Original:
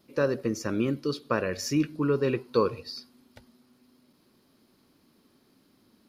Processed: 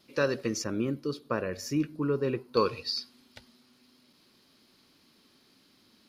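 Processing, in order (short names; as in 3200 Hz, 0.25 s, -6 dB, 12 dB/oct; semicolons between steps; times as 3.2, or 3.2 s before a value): bell 3800 Hz +9.5 dB 2.7 oct, from 0.64 s -3.5 dB, from 2.57 s +11 dB; gain -3 dB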